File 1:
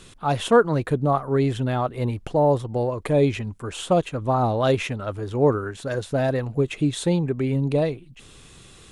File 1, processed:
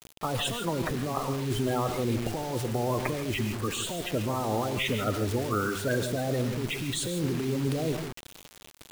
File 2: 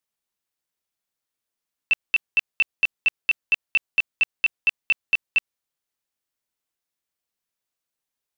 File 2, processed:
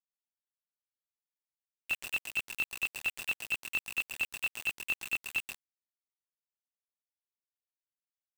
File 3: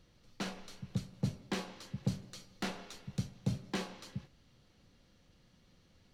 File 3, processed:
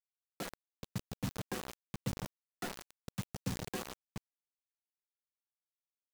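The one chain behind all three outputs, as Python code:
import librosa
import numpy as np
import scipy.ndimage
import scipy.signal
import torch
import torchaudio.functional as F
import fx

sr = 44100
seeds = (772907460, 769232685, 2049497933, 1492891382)

y = fx.spec_quant(x, sr, step_db=30)
y = fx.over_compress(y, sr, threshold_db=-26.0, ratio=-1.0)
y = fx.rev_gated(y, sr, seeds[0], gate_ms=180, shape='rising', drr_db=8.5)
y = fx.quant_dither(y, sr, seeds[1], bits=6, dither='none')
y = fx.transient(y, sr, attack_db=0, sustain_db=4)
y = y * librosa.db_to_amplitude(-3.5)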